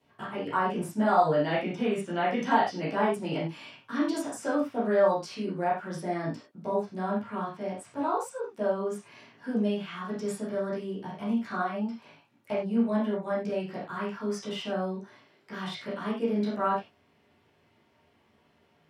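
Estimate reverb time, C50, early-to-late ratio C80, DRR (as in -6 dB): no single decay rate, 3.0 dB, 9.5 dB, -11.0 dB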